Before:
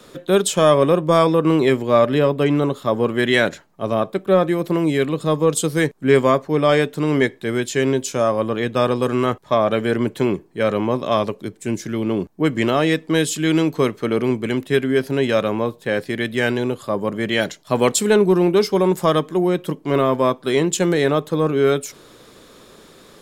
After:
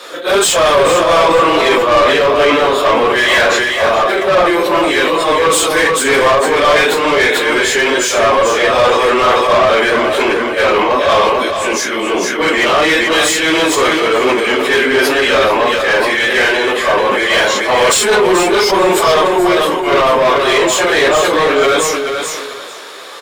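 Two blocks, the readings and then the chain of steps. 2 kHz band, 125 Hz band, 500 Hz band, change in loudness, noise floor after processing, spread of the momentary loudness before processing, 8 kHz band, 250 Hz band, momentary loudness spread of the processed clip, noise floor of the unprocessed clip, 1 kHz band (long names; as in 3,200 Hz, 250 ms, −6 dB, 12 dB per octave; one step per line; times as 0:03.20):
+14.0 dB, −7.0 dB, +6.5 dB, +7.5 dB, −21 dBFS, 7 LU, +11.0 dB, +0.5 dB, 4 LU, −47 dBFS, +12.0 dB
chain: random phases in long frames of 100 ms
high-pass filter 490 Hz 12 dB per octave
in parallel at 0 dB: brickwall limiter −13.5 dBFS, peak gain reduction 9 dB
on the sum: mid-hump overdrive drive 22 dB, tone 3,900 Hz, clips at −1.5 dBFS
on a send: repeating echo 437 ms, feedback 22%, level −7 dB
on the sum: level that may fall only so fast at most 23 dB per second
level −2.5 dB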